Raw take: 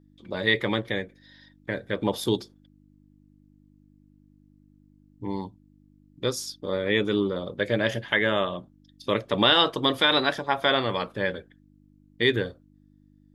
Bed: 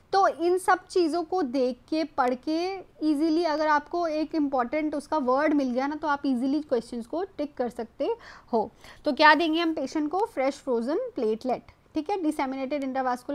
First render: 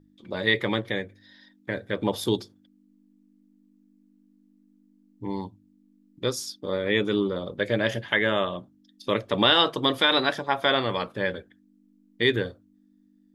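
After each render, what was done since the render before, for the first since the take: de-hum 50 Hz, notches 3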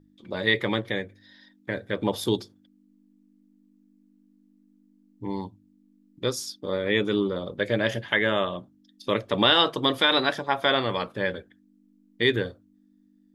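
no audible change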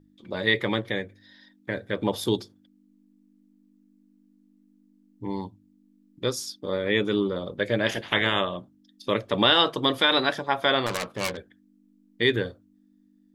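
7.86–8.40 s: spectral peaks clipped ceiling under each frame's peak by 17 dB; 10.86–11.37 s: self-modulated delay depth 0.57 ms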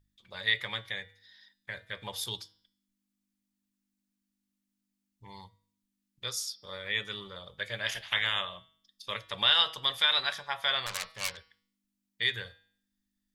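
amplifier tone stack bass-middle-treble 10-0-10; de-hum 160.7 Hz, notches 35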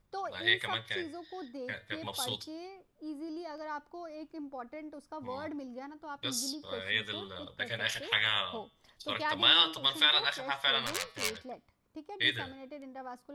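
add bed -17 dB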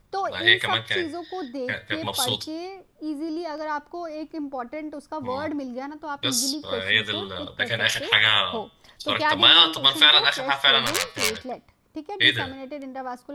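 trim +11 dB; peak limiter -3 dBFS, peak gain reduction 3 dB

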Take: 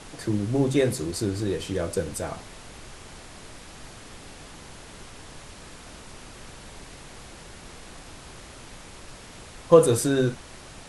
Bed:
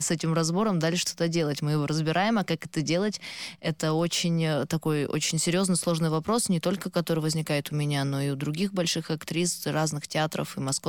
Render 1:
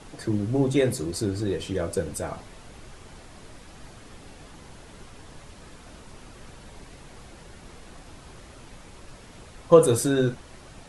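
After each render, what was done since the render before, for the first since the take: noise reduction 6 dB, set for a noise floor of -45 dBFS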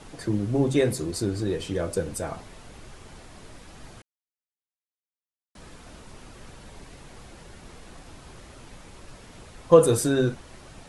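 4.02–5.55 s: mute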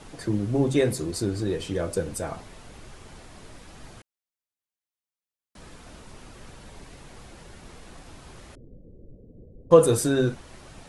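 8.55–9.71 s: elliptic low-pass 510 Hz, stop band 60 dB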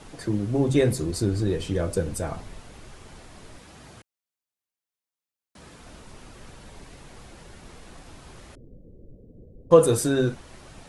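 0.69–2.60 s: bass shelf 160 Hz +7.5 dB; 3.57–5.79 s: high-pass 61 Hz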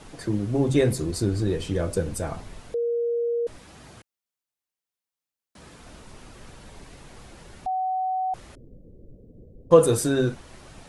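2.74–3.47 s: bleep 471 Hz -22 dBFS; 7.66–8.34 s: bleep 750 Hz -23 dBFS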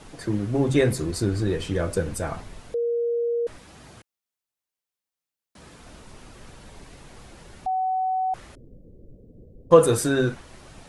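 dynamic bell 1.6 kHz, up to +5 dB, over -43 dBFS, Q 0.86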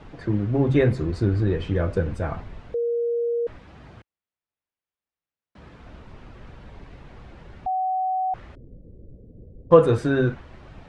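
low-pass 2.7 kHz 12 dB/octave; peaking EQ 66 Hz +5.5 dB 2.3 oct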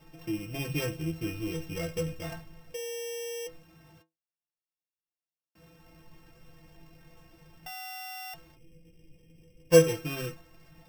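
sorted samples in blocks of 16 samples; inharmonic resonator 160 Hz, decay 0.21 s, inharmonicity 0.008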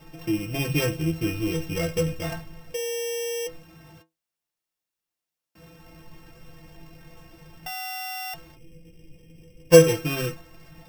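trim +7.5 dB; peak limiter -1 dBFS, peak gain reduction 2.5 dB

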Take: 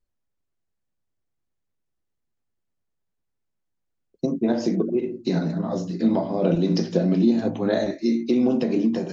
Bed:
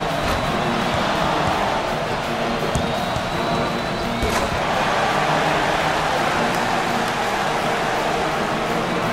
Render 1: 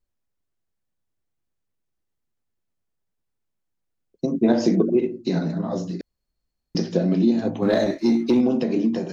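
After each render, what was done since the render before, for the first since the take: 4.34–5.07 s: gain +4 dB; 6.01–6.75 s: room tone; 7.62–8.41 s: waveshaping leveller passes 1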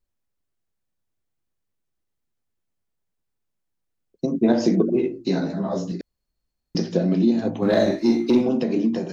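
4.93–5.92 s: doubling 15 ms -3 dB; 7.67–8.49 s: doubling 46 ms -5 dB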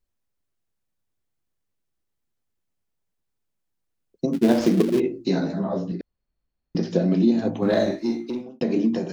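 4.33–5.00 s: dead-time distortion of 0.15 ms; 5.64–6.83 s: distance through air 230 m; 7.55–8.61 s: fade out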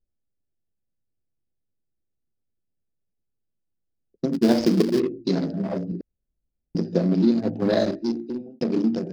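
local Wiener filter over 41 samples; peaking EQ 4.9 kHz +11.5 dB 0.36 oct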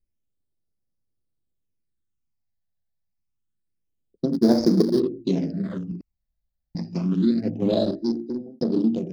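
phase shifter stages 8, 0.27 Hz, lowest notch 350–2800 Hz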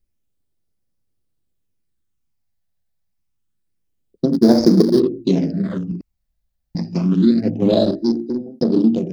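trim +6.5 dB; peak limiter -1 dBFS, peak gain reduction 2 dB

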